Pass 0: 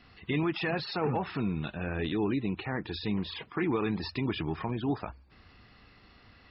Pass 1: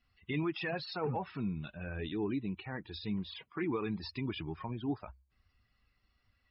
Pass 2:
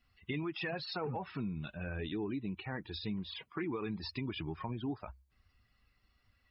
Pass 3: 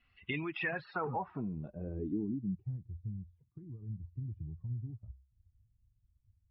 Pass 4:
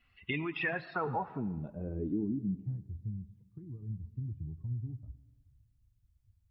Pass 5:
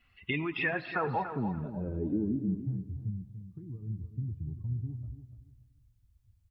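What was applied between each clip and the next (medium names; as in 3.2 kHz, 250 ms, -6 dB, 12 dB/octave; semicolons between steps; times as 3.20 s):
expander on every frequency bin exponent 1.5; trim -3 dB
compression, threshold -36 dBFS, peak gain reduction 6.5 dB; trim +2 dB
low-pass sweep 2.7 kHz -> 110 Hz, 0.47–2.82 s; trim -1 dB
reverberation RT60 1.3 s, pre-delay 60 ms, DRR 16.5 dB; trim +2 dB
feedback delay 289 ms, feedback 24%, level -10 dB; trim +2.5 dB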